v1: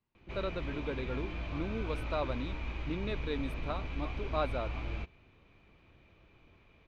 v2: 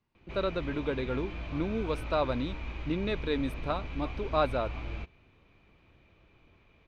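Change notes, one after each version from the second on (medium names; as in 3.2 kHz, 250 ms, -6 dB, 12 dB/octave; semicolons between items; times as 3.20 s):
speech +6.0 dB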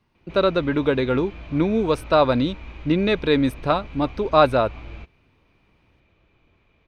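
speech +12.0 dB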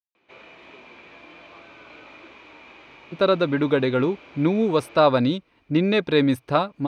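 speech: entry +2.85 s; background: add high-pass 370 Hz 12 dB/octave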